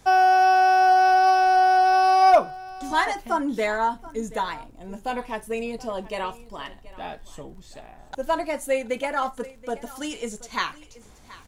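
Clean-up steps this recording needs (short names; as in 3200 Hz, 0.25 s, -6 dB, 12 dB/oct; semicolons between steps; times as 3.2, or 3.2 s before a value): clip repair -8.5 dBFS; de-click; inverse comb 0.728 s -19 dB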